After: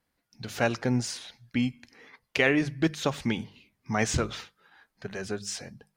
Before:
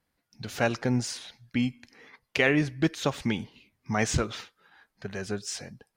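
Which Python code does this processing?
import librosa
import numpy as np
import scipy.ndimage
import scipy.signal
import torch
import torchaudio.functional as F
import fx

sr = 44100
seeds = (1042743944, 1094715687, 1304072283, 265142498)

y = fx.hum_notches(x, sr, base_hz=50, count=4)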